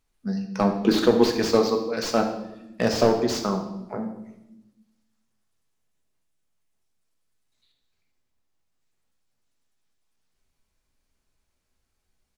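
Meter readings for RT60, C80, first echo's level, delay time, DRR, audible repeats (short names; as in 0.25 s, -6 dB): 0.90 s, 10.5 dB, -13.5 dB, 76 ms, 3.5 dB, 1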